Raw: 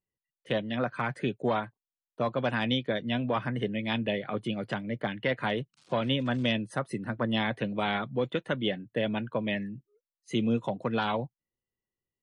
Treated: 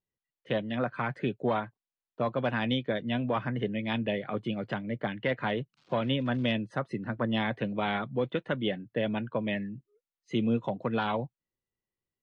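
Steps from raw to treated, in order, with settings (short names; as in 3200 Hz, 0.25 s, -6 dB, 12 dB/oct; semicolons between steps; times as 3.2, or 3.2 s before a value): air absorption 150 m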